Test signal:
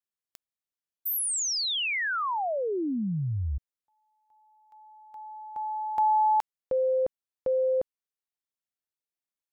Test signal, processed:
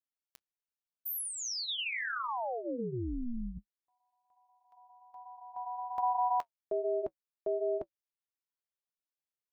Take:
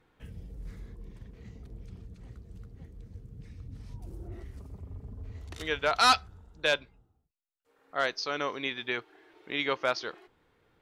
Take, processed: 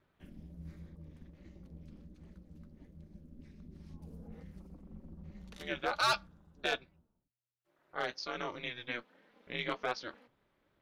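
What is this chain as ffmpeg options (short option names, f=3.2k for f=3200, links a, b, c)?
-af "equalizer=f=8k:t=o:w=0.43:g=-5,flanger=delay=3.9:depth=3.6:regen=-56:speed=1.3:shape=triangular,asoftclip=type=hard:threshold=-20.5dB,aeval=exprs='val(0)*sin(2*PI*120*n/s)':c=same"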